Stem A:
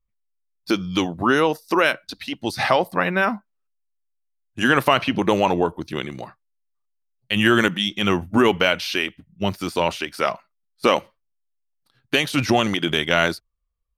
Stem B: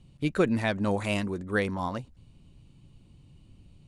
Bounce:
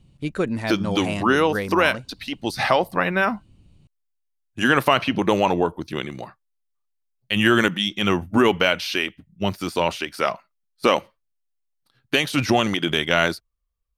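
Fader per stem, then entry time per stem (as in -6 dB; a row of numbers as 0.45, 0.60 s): -0.5, +0.5 dB; 0.00, 0.00 s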